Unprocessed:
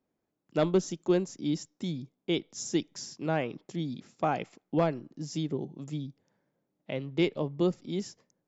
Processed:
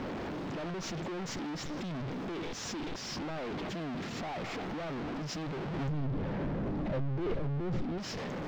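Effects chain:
sign of each sample alone
0:05.88–0:07.98: spectral tilt −3 dB per octave
downward compressor 2 to 1, threshold −29 dBFS, peak gain reduction 5.5 dB
high-frequency loss of the air 210 metres
background raised ahead of every attack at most 27 dB per second
level −4 dB

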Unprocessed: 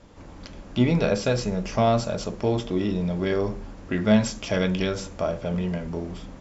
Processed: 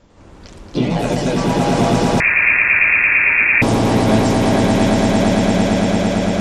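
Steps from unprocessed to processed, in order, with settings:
delay with pitch and tempo change per echo 101 ms, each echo +3 semitones, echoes 3
echo that builds up and dies away 113 ms, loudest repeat 8, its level −4 dB
0:02.20–0:03.62: voice inversion scrambler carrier 2,600 Hz

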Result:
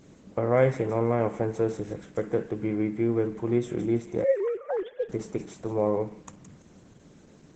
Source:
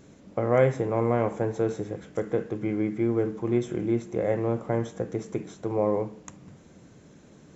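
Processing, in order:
0:04.24–0:05.09: three sine waves on the formant tracks
delay with a high-pass on its return 167 ms, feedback 35%, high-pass 2,100 Hz, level −9 dB
Opus 12 kbit/s 48,000 Hz

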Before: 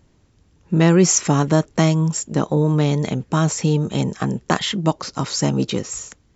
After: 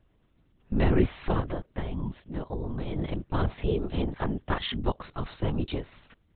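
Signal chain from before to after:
0:01.40–0:02.97: downward compressor 10 to 1, threshold −20 dBFS, peak gain reduction 10 dB
0:03.51–0:04.43: comb filter 3.9 ms, depth 82%
linear-prediction vocoder at 8 kHz whisper
level −8.5 dB

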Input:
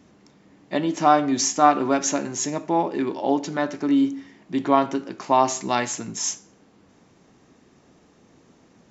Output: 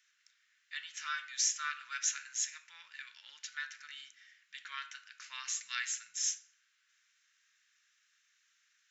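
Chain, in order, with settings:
elliptic high-pass filter 1,500 Hz, stop band 50 dB
notch filter 4,600 Hz, Q 19
on a send: convolution reverb RT60 0.55 s, pre-delay 20 ms, DRR 15 dB
on the sum: level −6.5 dB

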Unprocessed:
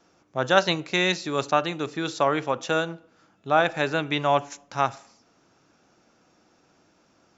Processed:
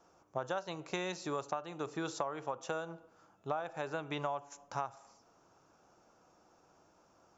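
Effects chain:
octave-band graphic EQ 125/250/1,000/2,000/4,000 Hz −3/−7/+4/−8/−8 dB
downward compressor 16 to 1, threshold −31 dBFS, peak gain reduction 18.5 dB
level −2 dB

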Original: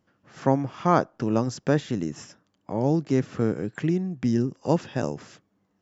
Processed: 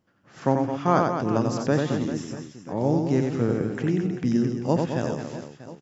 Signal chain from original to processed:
reverse bouncing-ball delay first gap 90 ms, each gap 1.4×, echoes 5
level −1 dB

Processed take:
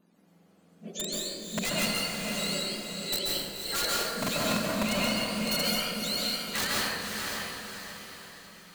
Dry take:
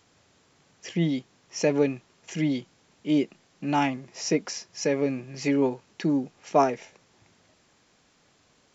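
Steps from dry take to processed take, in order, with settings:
frequency axis turned over on the octave scale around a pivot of 1,100 Hz
wrap-around overflow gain 19 dB
on a send: feedback delay with all-pass diffusion 544 ms, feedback 45%, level −4 dB
on the sum: dense smooth reverb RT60 1.4 s, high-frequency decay 0.55×, pre-delay 120 ms, DRR −4 dB
level −6 dB

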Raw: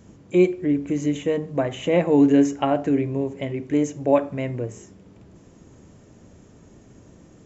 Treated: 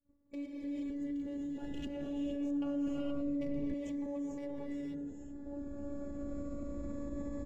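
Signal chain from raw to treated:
adaptive Wiener filter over 15 samples
camcorder AGC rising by 9.7 dB per second
downward expander −36 dBFS
downward compressor, threshold −24 dBFS, peak gain reduction 12 dB
phases set to zero 285 Hz
parametric band 65 Hz +9 dB 1.2 octaves
slap from a distant wall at 240 metres, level −11 dB
convolution reverb, pre-delay 3 ms, DRR −1.5 dB
brickwall limiter −24 dBFS, peak gain reduction 9.5 dB
0:01.62–0:03.74: low-shelf EQ 190 Hz +10 dB
phaser whose notches keep moving one way falling 0.29 Hz
level −8.5 dB

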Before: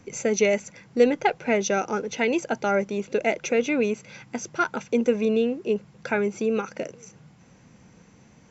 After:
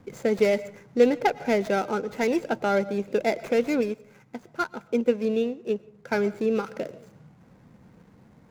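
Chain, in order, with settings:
running median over 15 samples
convolution reverb RT60 0.50 s, pre-delay 80 ms, DRR 18 dB
0:03.81–0:06.12: expander for the loud parts 1.5 to 1, over −32 dBFS

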